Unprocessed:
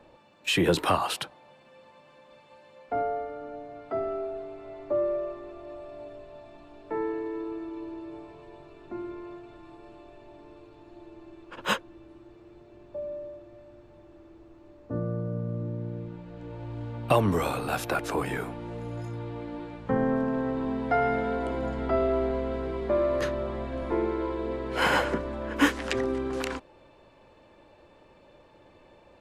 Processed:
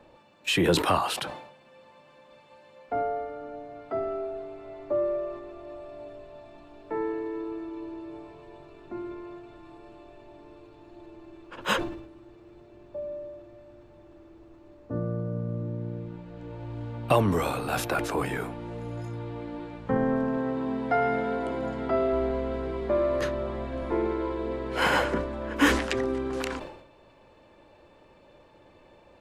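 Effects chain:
0:20.37–0:22.13: high-pass filter 100 Hz 12 dB per octave
level that may fall only so fast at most 71 dB per second

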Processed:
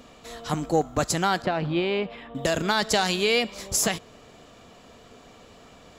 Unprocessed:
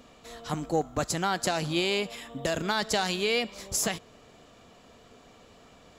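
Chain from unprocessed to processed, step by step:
0:01.42–0:02.35: high-frequency loss of the air 420 metres
level +4.5 dB

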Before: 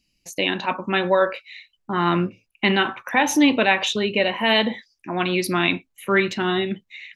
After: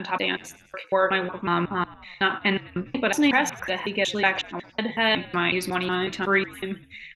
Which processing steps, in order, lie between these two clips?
slices reordered back to front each 184 ms, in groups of 4
parametric band 1,500 Hz +4.5 dB 1 octave
echo with shifted repeats 101 ms, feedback 55%, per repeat −56 Hz, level −20 dB
level −4.5 dB

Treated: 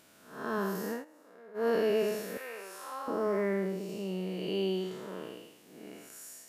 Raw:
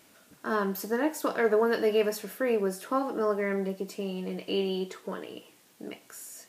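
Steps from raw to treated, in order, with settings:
spectrum smeared in time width 237 ms
0:00.91–0:01.68: duck −24 dB, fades 0.14 s
0:02.37–0:03.08: high-pass filter 980 Hz 12 dB per octave

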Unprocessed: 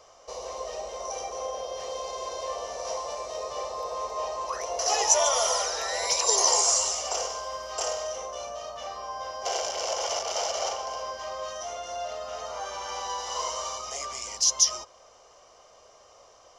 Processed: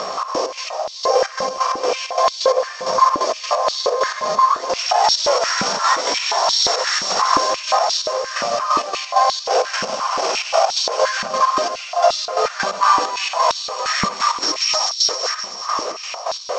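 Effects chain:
samples sorted by size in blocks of 8 samples
upward compression, threshold −29 dBFS
multi-voice chorus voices 6, 1.1 Hz, delay 18 ms, depth 3 ms
harmonic generator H 8 −22 dB, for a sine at −10 dBFS
Butterworth low-pass 7,900 Hz 72 dB per octave
parametric band 1,200 Hz +6 dB 1.3 octaves
delay with a high-pass on its return 130 ms, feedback 79%, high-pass 2,500 Hz, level −7 dB
gate pattern "xx.x.x...xx.x.x." 131 BPM −12 dB
echo with a time of its own for lows and highs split 2,500 Hz, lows 625 ms, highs 382 ms, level −12 dB
boost into a limiter +25 dB
high-pass on a step sequencer 5.7 Hz 200–3,900 Hz
level −9.5 dB

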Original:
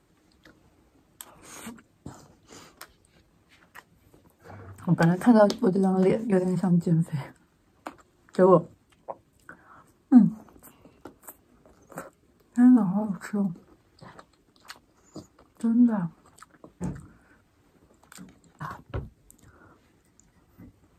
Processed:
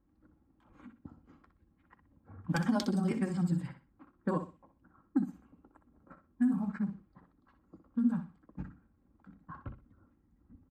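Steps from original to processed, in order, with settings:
low-pass that shuts in the quiet parts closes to 770 Hz, open at −18.5 dBFS
parametric band 560 Hz −12 dB 1.4 octaves
comb filter 3.7 ms, depth 40%
downward compressor, threshold −21 dBFS, peak gain reduction 11 dB
time stretch by overlap-add 0.51×, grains 84 ms
on a send: repeating echo 62 ms, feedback 25%, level −10 dB
on the sum: level −3 dB

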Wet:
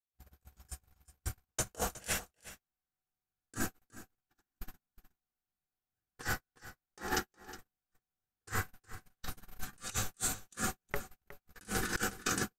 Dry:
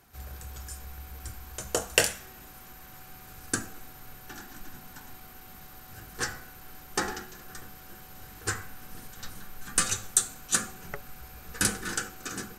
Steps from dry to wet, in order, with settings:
noise gate −36 dBFS, range −57 dB
compressor whose output falls as the input rises −38 dBFS, ratio −0.5
single-tap delay 364 ms −16 dB
level +1.5 dB

